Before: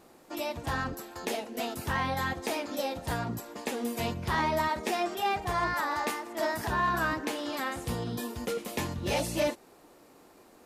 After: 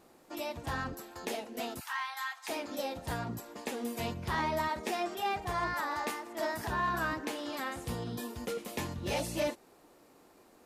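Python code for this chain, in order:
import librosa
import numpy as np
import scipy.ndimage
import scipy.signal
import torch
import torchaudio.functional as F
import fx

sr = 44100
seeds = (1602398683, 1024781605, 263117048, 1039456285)

y = fx.steep_highpass(x, sr, hz=930.0, slope=36, at=(1.79, 2.48), fade=0.02)
y = y * librosa.db_to_amplitude(-4.0)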